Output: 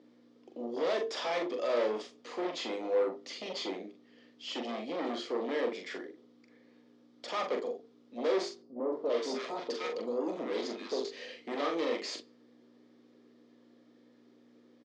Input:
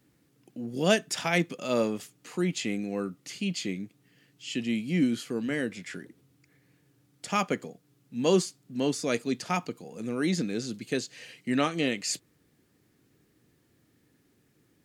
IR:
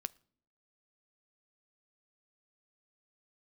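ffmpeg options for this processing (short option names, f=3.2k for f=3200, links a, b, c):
-filter_complex "[0:a]equalizer=f=2.1k:t=o:w=0.76:g=-5.5,bandreject=f=50:t=h:w=6,bandreject=f=100:t=h:w=6,bandreject=f=150:t=h:w=6,bandreject=f=200:t=h:w=6,bandreject=f=250:t=h:w=6,bandreject=f=300:t=h:w=6,bandreject=f=350:t=h:w=6,bandreject=f=400:t=h:w=6,bandreject=f=450:t=h:w=6,volume=27.5dB,asoftclip=hard,volume=-27.5dB,aeval=exprs='val(0)+0.00447*(sin(2*PI*60*n/s)+sin(2*PI*2*60*n/s)/2+sin(2*PI*3*60*n/s)/3+sin(2*PI*4*60*n/s)/4+sin(2*PI*5*60*n/s)/5)':c=same,aeval=exprs='0.0501*sin(PI/2*1.58*val(0)/0.0501)':c=same,highpass=f=350:w=0.5412,highpass=f=350:w=1.3066,equalizer=f=510:t=q:w=4:g=4,equalizer=f=820:t=q:w=4:g=-4,equalizer=f=1.5k:t=q:w=4:g=-8,equalizer=f=2.7k:t=q:w=4:g=-8,equalizer=f=4.1k:t=q:w=4:g=-4,lowpass=f=4.4k:w=0.5412,lowpass=f=4.4k:w=1.3066,asplit=2[a][b];[b]adelay=42,volume=-5.5dB[c];[a][c]amix=inputs=2:normalize=0,asettb=1/sr,asplit=3[d][e][f];[d]atrim=end=8.624[g];[e]atrim=start=8.62:end=11.05,asetpts=PTS-STARTPTS,afade=t=in:d=0.004:c=qsin,afade=t=out:st=2.426:d=0.004:c=qsin,acrossover=split=1100[h][i];[i]adelay=300[j];[h][j]amix=inputs=2:normalize=0,atrim=end_sample=107163[k];[f]atrim=start=11.046[l];[g][k]acrossfade=d=0.004:c1=hsin:c2=qsin[m];[m][l]acrossfade=d=0.004:c1=qsin:c2=hsin[n];[1:a]atrim=start_sample=2205[o];[n][o]afir=irnorm=-1:irlink=0,volume=1dB"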